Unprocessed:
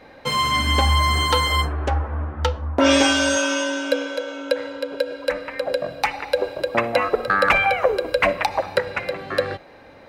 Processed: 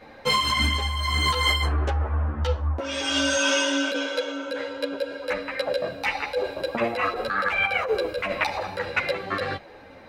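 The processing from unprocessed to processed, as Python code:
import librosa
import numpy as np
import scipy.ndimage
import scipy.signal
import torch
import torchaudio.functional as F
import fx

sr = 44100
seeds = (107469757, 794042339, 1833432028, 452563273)

y = fx.over_compress(x, sr, threshold_db=-22.0, ratio=-1.0)
y = fx.dynamic_eq(y, sr, hz=3500.0, q=0.73, threshold_db=-35.0, ratio=4.0, max_db=5)
y = fx.ensemble(y, sr)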